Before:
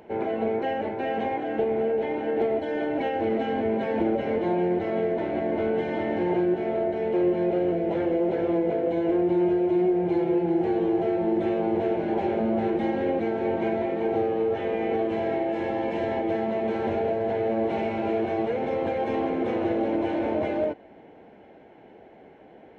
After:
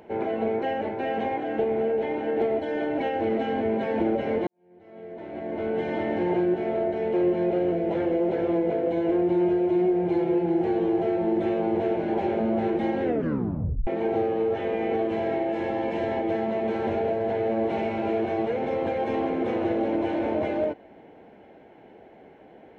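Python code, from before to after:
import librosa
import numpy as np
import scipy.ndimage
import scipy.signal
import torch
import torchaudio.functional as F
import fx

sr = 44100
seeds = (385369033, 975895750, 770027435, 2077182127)

y = fx.edit(x, sr, fx.fade_in_span(start_s=4.47, length_s=1.41, curve='qua'),
    fx.tape_stop(start_s=13.03, length_s=0.84), tone=tone)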